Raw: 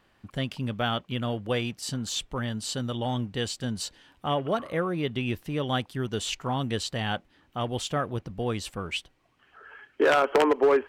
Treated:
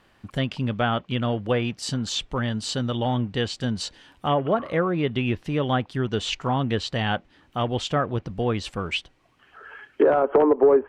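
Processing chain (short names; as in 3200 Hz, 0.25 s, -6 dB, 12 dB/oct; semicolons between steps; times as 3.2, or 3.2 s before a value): treble ducked by the level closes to 750 Hz, closed at -19 dBFS; gain +5 dB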